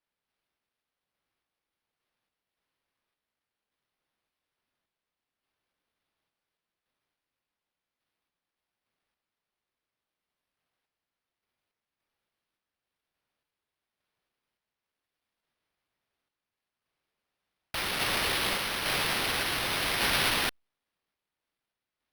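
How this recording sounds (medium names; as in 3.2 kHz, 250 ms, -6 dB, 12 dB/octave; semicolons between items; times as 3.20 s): random-step tremolo; aliases and images of a low sample rate 7.2 kHz, jitter 0%; Opus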